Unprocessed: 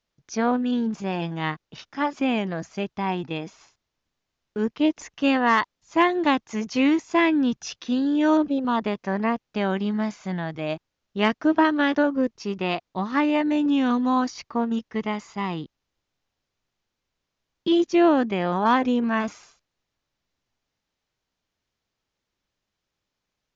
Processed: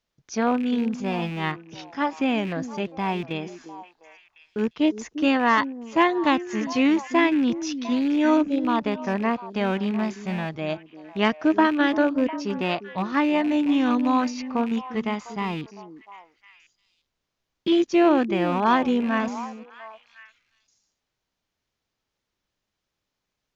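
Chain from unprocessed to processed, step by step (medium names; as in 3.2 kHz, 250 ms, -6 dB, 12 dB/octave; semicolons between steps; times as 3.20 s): rattle on loud lows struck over -31 dBFS, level -29 dBFS; repeats whose band climbs or falls 351 ms, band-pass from 310 Hz, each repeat 1.4 oct, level -9.5 dB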